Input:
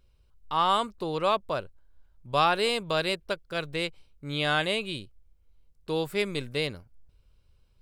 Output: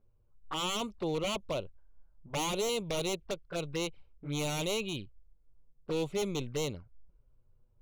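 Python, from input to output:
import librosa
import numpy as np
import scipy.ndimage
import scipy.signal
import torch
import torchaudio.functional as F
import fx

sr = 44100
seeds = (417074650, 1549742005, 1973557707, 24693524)

y = fx.env_lowpass(x, sr, base_hz=910.0, full_db=-22.5)
y = 10.0 ** (-24.5 / 20.0) * (np.abs((y / 10.0 ** (-24.5 / 20.0) + 3.0) % 4.0 - 2.0) - 1.0)
y = fx.env_flanger(y, sr, rest_ms=9.8, full_db=-30.5)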